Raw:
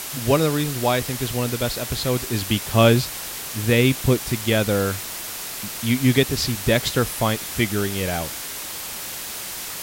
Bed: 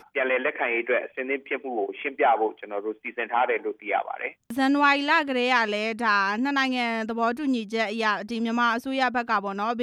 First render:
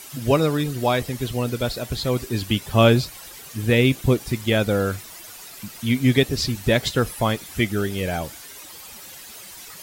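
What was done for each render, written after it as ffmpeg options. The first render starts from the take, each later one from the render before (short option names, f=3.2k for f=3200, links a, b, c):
-af "afftdn=nr=12:nf=-32"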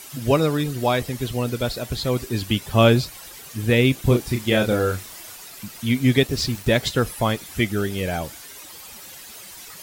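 -filter_complex "[0:a]asettb=1/sr,asplit=3[a][b][c];[a]atrim=end=4.014[d];[b]atrim=start=4.01:end=5.35,asetpts=PTS-STARTPTS,afade=t=in:d=0.004:c=qsin,afade=t=out:st=1.336:d=0.004:c=qsin,asplit=2[e][f];[f]adelay=33,volume=-5.5dB[g];[e][g]amix=inputs=2:normalize=0,atrim=end_sample=59094[h];[c]atrim=start=5.346[i];[d][h]acrossfade=d=0.004:c1=hsin:c2=qsin[j];[j][i]acrossfade=d=0.004:c1=qsin:c2=hsin,asettb=1/sr,asplit=3[k][l][m];[k]atrim=end=6.274[n];[l]atrim=start=6.27:end=6.78,asetpts=PTS-STARTPTS,afade=t=in:d=0.004:c=qsin,afade=t=out:st=0.506:d=0.004:c=qsin,aeval=exprs='val(0)*gte(abs(val(0)),0.0168)':c=same[o];[m]atrim=start=6.776[p];[n][o]acrossfade=d=0.004:c1=hsin:c2=qsin[q];[q][p]acrossfade=d=0.004:c1=qsin:c2=hsin"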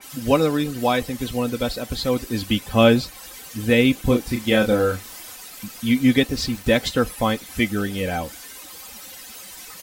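-af "aecho=1:1:3.9:0.5,adynamicequalizer=threshold=0.0158:dfrequency=3500:dqfactor=0.7:tfrequency=3500:tqfactor=0.7:attack=5:release=100:ratio=0.375:range=2:mode=cutabove:tftype=highshelf"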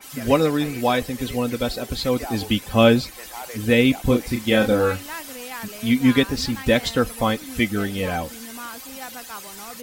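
-filter_complex "[1:a]volume=-13.5dB[a];[0:a][a]amix=inputs=2:normalize=0"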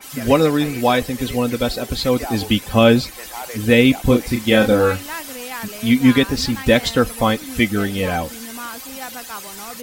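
-af "volume=4dB,alimiter=limit=-2dB:level=0:latency=1"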